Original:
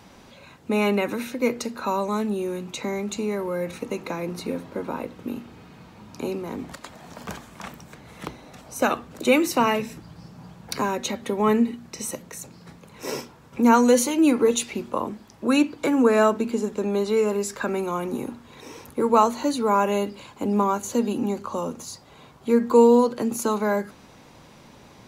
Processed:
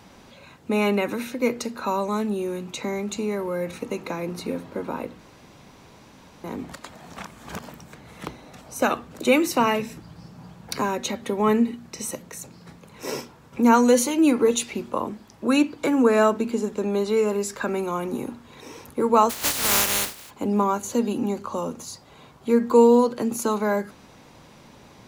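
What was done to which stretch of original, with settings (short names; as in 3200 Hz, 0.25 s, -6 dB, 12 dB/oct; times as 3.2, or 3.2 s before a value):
5.19–6.44 room tone
7.17–7.69 reverse
19.29–20.29 spectral contrast lowered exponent 0.14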